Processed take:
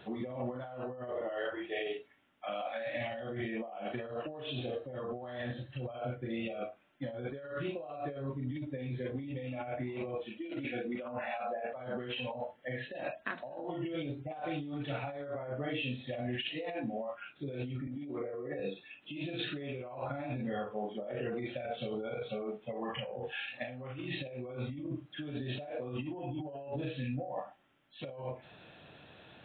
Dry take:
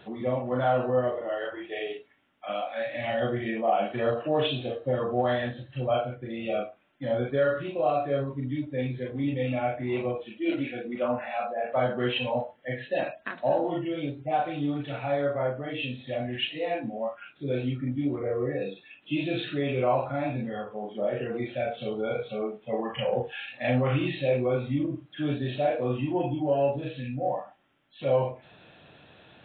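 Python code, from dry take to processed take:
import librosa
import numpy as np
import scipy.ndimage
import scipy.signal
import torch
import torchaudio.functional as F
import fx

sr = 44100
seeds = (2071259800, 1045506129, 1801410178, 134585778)

y = fx.over_compress(x, sr, threshold_db=-33.0, ratio=-1.0)
y = fx.highpass(y, sr, hz=180.0, slope=12, at=(17.87, 18.6))
y = F.gain(torch.from_numpy(y), -6.0).numpy()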